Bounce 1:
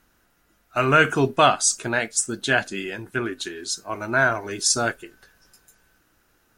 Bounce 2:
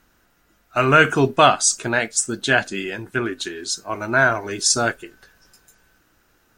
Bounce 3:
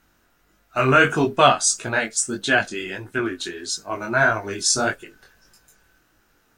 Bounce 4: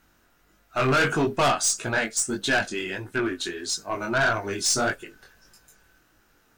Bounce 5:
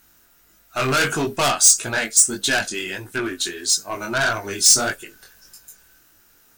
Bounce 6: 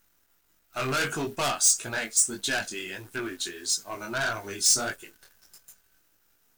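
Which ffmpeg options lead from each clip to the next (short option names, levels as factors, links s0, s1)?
-af "equalizer=f=11000:t=o:w=0.28:g=-7.5,volume=1.41"
-af "flanger=delay=18.5:depth=4.6:speed=1.6,volume=1.19"
-af "aeval=exprs='(tanh(7.08*val(0)+0.1)-tanh(0.1))/7.08':c=same"
-af "crystalizer=i=3:c=0"
-af "acrusher=bits=8:dc=4:mix=0:aa=0.000001,volume=0.398"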